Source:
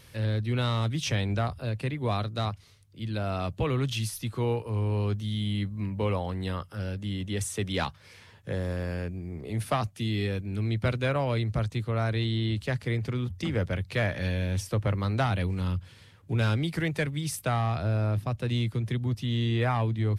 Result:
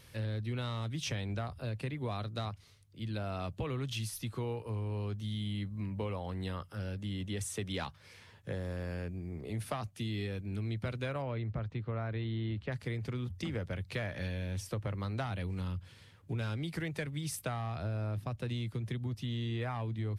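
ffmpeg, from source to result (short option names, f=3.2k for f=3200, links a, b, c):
-filter_complex "[0:a]asettb=1/sr,asplit=3[a][b][c];[a]atrim=end=11.224[d];[b]atrim=start=11.22:end=12.72,asetpts=PTS-STARTPTS,afade=t=in:d=0.004:c=qsin,afade=t=out:st=1.496:d=0.004:c=qsin,lowpass=2.4k[e];[c]atrim=start=12.716[f];[d][e]acrossfade=d=0.004:c1=hsin:c2=qsin[g];[g][f]acrossfade=d=0.004:c1=qsin:c2=hsin,acompressor=threshold=-29dB:ratio=6,volume=-4dB"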